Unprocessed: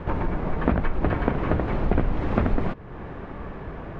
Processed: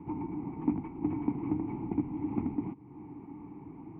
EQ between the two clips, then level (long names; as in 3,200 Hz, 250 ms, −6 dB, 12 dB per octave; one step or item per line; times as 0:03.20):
formant filter u
high-frequency loss of the air 490 metres
parametric band 120 Hz +12.5 dB 1.4 octaves
0.0 dB